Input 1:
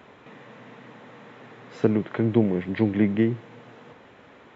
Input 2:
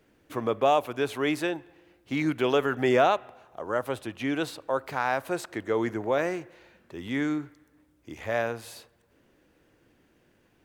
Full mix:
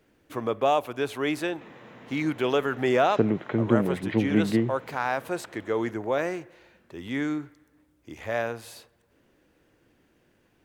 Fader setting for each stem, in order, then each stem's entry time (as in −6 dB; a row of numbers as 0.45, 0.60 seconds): −2.0, −0.5 decibels; 1.35, 0.00 seconds